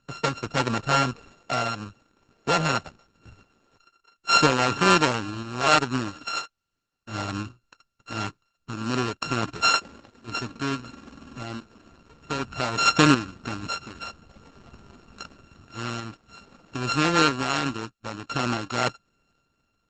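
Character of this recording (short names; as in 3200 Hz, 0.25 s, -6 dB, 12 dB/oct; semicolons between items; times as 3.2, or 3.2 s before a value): a buzz of ramps at a fixed pitch in blocks of 32 samples; random-step tremolo; Opus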